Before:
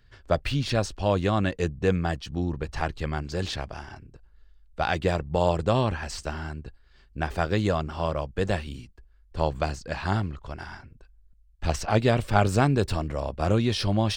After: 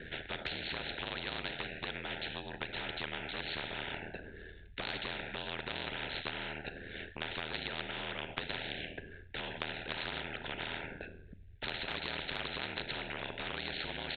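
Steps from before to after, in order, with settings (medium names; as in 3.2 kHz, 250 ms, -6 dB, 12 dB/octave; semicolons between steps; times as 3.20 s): resampled via 8 kHz; peak limiter -15 dBFS, peak gain reduction 7.5 dB; Butterworth band-stop 1.1 kHz, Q 0.83; Schroeder reverb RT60 0.55 s, combs from 26 ms, DRR 12.5 dB; ring modulator 40 Hz; graphic EQ with 31 bands 400 Hz +11 dB, 1 kHz +5 dB, 1.6 kHz +11 dB, 3.15 kHz -8 dB; compression 2.5:1, threshold -36 dBFS, peak gain reduction 12 dB; 11.68–12.80 s: tilt shelf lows -5 dB, about 780 Hz; spectrum-flattening compressor 10:1; trim +2 dB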